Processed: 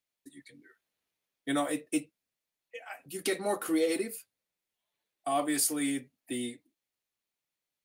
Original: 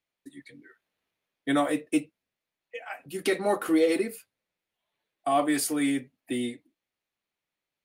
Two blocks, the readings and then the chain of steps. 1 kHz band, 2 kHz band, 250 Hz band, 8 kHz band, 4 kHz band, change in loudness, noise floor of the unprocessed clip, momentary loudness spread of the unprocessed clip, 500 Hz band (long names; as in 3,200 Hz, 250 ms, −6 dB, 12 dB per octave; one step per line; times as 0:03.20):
−5.5 dB, −5.0 dB, −5.5 dB, +2.0 dB, −2.0 dB, −4.5 dB, below −85 dBFS, 16 LU, −5.5 dB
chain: bass and treble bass 0 dB, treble +8 dB
level −5.5 dB